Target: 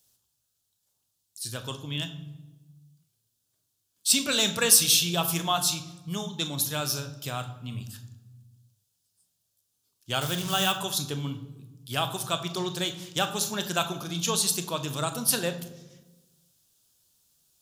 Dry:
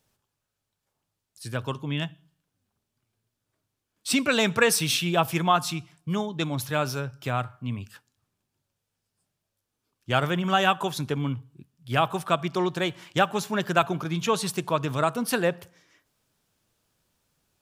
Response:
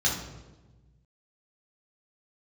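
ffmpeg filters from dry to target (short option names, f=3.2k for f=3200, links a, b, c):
-filter_complex "[0:a]asettb=1/sr,asplit=3[a][b][c];[a]atrim=end=10.214[d];[b]atrim=start=10.21:end=10.72,asetpts=PTS-STARTPTS,afade=t=in:d=0.004:c=qsin,afade=t=out:st=0.506:d=0.004:c=qsin,acrusher=bits=5:mix=0:aa=0.5[e];[c]atrim=start=10.716[f];[d][e]acrossfade=d=0.004:c1=hsin:c2=qsin[g];[g][f]acrossfade=d=0.004:c1=qsin:c2=hsin,aexciter=amount=4:drive=6.4:freq=3.1k,asplit=2[h][i];[1:a]atrim=start_sample=2205,adelay=25[j];[i][j]afir=irnorm=-1:irlink=0,volume=-19dB[k];[h][k]amix=inputs=2:normalize=0,volume=-7dB"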